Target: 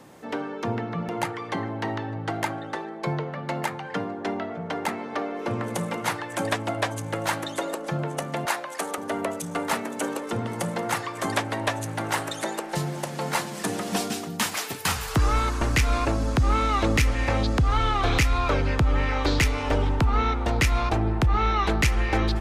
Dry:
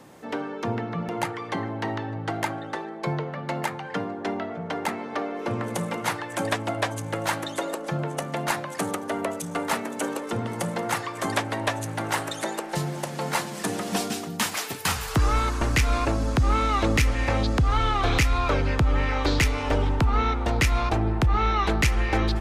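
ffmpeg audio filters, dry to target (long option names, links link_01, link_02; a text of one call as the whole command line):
ffmpeg -i in.wav -filter_complex "[0:a]asettb=1/sr,asplit=3[link_01][link_02][link_03];[link_01]atrim=end=8.454[link_04];[link_02]atrim=start=8.45:end=8.98,asetpts=PTS-STARTPTS,afade=type=in:duration=0.004:curve=qsin,afade=type=out:start_time=0.526:duration=0.004:curve=qsin,highpass=420[link_05];[link_03]atrim=start=8.976[link_06];[link_04][link_05]acrossfade=duration=0.004:curve1=hsin:curve2=qsin[link_07];[link_07][link_06]acrossfade=duration=0.004:curve1=qsin:curve2=hsin" out.wav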